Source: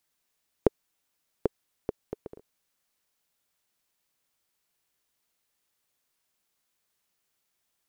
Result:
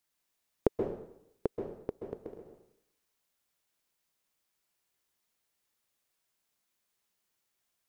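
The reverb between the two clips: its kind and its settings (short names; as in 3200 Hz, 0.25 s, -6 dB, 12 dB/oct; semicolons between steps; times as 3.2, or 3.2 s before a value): plate-style reverb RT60 0.77 s, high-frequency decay 0.85×, pre-delay 0.12 s, DRR 3.5 dB; gain -4 dB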